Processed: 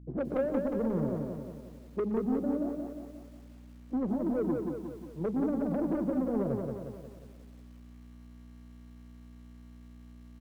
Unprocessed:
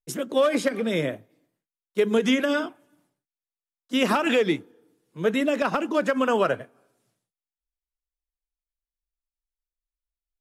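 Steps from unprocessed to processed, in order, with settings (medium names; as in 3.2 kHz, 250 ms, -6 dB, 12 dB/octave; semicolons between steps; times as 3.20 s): Chebyshev low-pass 740 Hz, order 3; low-pass that closes with the level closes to 360 Hz, closed at -22 dBFS; 5.36–6.61 s: bass shelf 210 Hz +11 dB; gain riding 0.5 s; saturation -24.5 dBFS, distortion -13 dB; hum 60 Hz, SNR 14 dB; on a send: feedback delay 120 ms, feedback 37%, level -16 dB; on the sum: bit-crushed delay 179 ms, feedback 55%, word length 10-bit, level -4 dB; trim -1.5 dB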